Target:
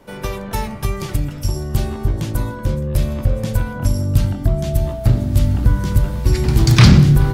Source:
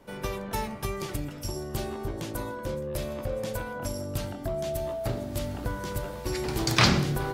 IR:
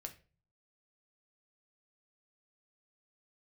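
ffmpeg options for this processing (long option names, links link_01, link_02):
-af "asubboost=boost=6:cutoff=200,aeval=exprs='0.841*sin(PI/2*1.41*val(0)/0.841)':channel_layout=same"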